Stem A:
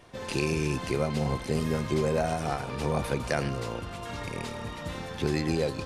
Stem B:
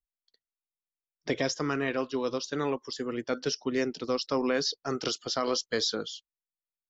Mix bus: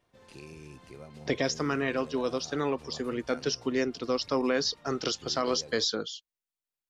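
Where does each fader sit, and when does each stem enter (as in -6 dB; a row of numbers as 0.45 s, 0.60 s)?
-19.0 dB, +0.5 dB; 0.00 s, 0.00 s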